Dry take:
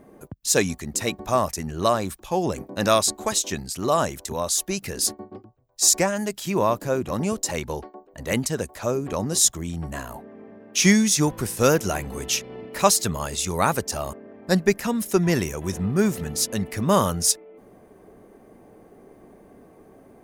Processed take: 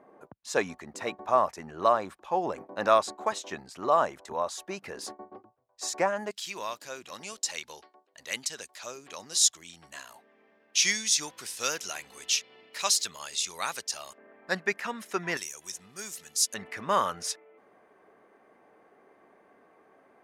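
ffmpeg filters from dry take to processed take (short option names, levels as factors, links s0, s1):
-af "asetnsamples=n=441:p=0,asendcmd='6.31 bandpass f 4100;14.18 bandpass f 1700;15.37 bandpass f 6600;16.54 bandpass f 1600',bandpass=f=990:t=q:w=1:csg=0"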